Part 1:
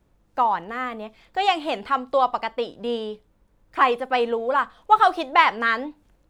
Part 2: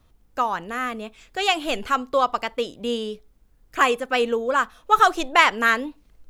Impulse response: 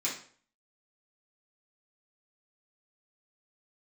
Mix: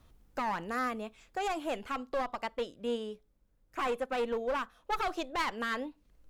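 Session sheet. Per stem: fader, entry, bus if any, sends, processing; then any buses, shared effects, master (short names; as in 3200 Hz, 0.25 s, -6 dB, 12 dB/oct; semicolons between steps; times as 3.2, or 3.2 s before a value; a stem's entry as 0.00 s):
-5.0 dB, 0.00 s, no send, bell 540 Hz +5.5 dB 0.36 oct; upward expander 1.5:1, over -38 dBFS
-1.0 dB, 0.00 s, no send, auto duck -13 dB, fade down 1.90 s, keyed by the first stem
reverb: off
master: one-sided clip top -28.5 dBFS, bottom -12 dBFS; limiter -23.5 dBFS, peak gain reduction 11 dB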